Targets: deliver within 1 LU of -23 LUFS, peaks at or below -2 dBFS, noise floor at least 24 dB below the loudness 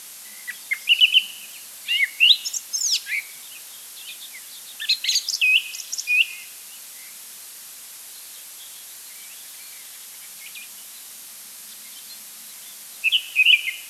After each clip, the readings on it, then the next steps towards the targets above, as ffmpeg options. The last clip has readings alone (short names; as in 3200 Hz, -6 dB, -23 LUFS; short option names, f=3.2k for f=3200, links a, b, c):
noise floor -41 dBFS; noise floor target -43 dBFS; loudness -18.5 LUFS; peak -3.5 dBFS; loudness target -23.0 LUFS
-> -af "afftdn=nr=6:nf=-41"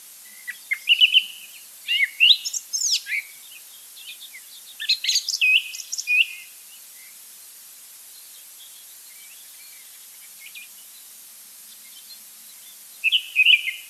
noise floor -45 dBFS; loudness -18.5 LUFS; peak -3.5 dBFS; loudness target -23.0 LUFS
-> -af "volume=-4.5dB"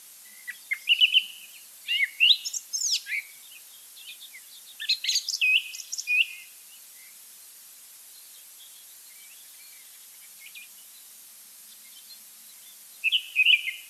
loudness -23.0 LUFS; peak -8.0 dBFS; noise floor -49 dBFS